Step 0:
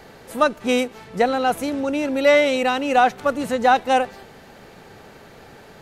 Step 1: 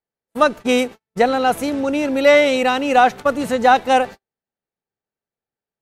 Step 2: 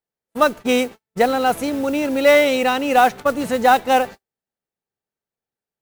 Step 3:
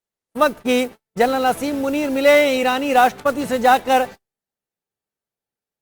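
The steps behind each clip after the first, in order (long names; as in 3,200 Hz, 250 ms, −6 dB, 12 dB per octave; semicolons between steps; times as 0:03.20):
noise gate −31 dBFS, range −51 dB; level +3 dB
noise that follows the level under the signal 23 dB; level −1 dB
Opus 32 kbit/s 48,000 Hz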